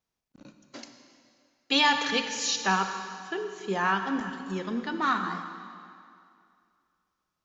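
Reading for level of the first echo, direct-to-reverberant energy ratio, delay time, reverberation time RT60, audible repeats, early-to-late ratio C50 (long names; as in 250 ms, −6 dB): no echo audible, 6.5 dB, no echo audible, 2.3 s, no echo audible, 7.0 dB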